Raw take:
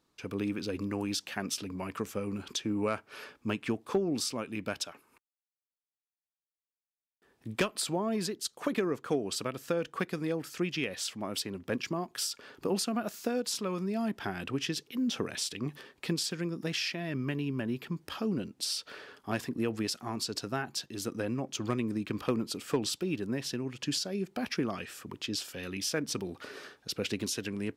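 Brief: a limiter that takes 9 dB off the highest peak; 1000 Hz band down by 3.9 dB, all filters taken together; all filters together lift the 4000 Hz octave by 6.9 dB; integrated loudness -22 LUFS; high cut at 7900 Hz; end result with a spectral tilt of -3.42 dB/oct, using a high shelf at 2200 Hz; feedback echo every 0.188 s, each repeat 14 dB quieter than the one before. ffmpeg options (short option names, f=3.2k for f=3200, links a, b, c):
-af "lowpass=7.9k,equalizer=f=1k:t=o:g=-7,highshelf=f=2.2k:g=5,equalizer=f=4k:t=o:g=4.5,alimiter=limit=-20.5dB:level=0:latency=1,aecho=1:1:188|376:0.2|0.0399,volume=11dB"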